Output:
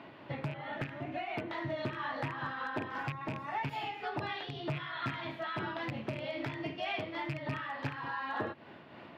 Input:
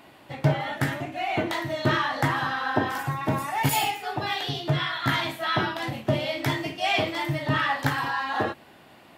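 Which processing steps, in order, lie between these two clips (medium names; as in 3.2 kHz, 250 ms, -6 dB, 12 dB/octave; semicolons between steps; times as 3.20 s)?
rattle on loud lows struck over -27 dBFS, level -14 dBFS; band-stop 770 Hz, Q 12; compression 8:1, threshold -35 dBFS, peak gain reduction 18.5 dB; high-pass 83 Hz 24 dB/octave; distance through air 280 m; hard clipper -30 dBFS, distortion -21 dB; random flutter of the level, depth 55%; trim +4.5 dB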